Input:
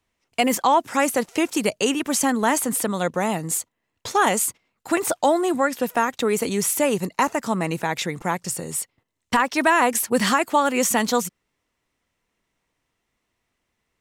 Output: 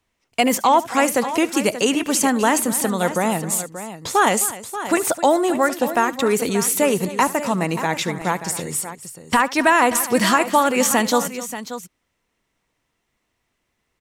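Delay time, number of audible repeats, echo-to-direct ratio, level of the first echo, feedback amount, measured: 72 ms, 3, −10.0 dB, −19.5 dB, repeats not evenly spaced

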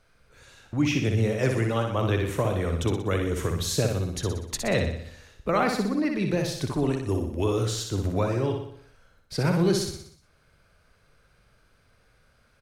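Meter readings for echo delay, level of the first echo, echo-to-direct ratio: 61 ms, −5.0 dB, −3.5 dB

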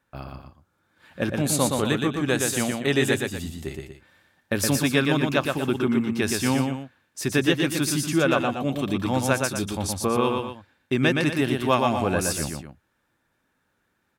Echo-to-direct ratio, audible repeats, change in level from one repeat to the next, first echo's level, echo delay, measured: −3.5 dB, 2, −7.5 dB, −4.0 dB, 119 ms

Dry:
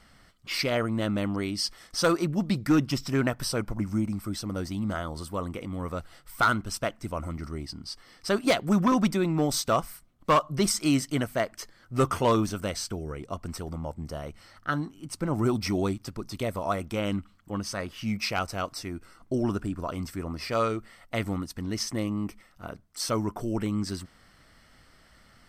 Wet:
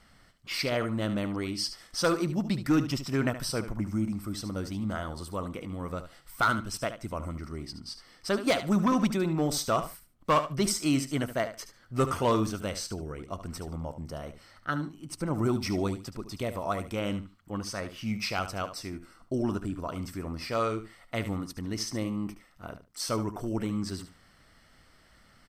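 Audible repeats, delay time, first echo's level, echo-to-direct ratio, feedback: 2, 73 ms, −11.5 dB, −11.5 dB, 18%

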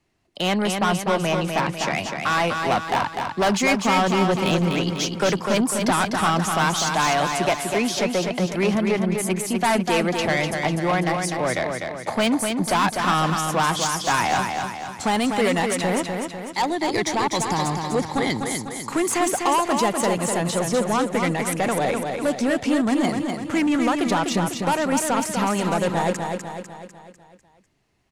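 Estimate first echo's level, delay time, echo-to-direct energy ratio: −5.0 dB, 249 ms, −3.5 dB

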